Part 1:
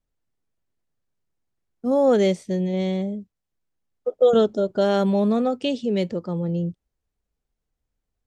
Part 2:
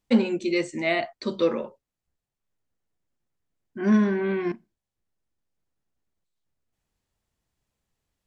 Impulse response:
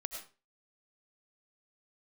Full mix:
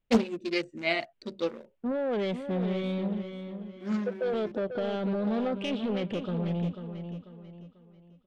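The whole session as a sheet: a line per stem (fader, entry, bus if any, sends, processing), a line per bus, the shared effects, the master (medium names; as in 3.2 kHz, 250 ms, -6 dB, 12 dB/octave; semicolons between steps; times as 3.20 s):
-2.0 dB, 0.00 s, no send, echo send -8.5 dB, resonant high shelf 4.1 kHz -12 dB, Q 3; peak limiter -18 dBFS, peak gain reduction 10.5 dB; saturation -23 dBFS, distortion -15 dB
1.06 s -1.5 dB -> 1.78 s -9.5 dB, 0.00 s, no send, no echo send, local Wiener filter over 41 samples; treble shelf 2.2 kHz +8 dB; upward expansion 1.5:1, over -28 dBFS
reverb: none
echo: feedback delay 492 ms, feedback 37%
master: loudspeaker Doppler distortion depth 0.68 ms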